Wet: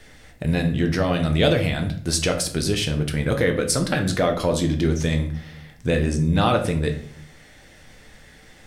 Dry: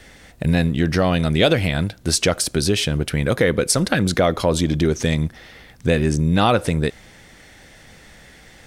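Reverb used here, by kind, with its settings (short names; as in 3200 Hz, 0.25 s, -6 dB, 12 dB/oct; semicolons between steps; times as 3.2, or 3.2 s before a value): shoebox room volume 65 m³, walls mixed, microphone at 0.45 m; gain -4.5 dB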